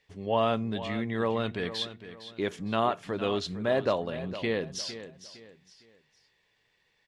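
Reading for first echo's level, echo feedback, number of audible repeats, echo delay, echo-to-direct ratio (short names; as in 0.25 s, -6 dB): -13.0 dB, 33%, 3, 0.458 s, -12.5 dB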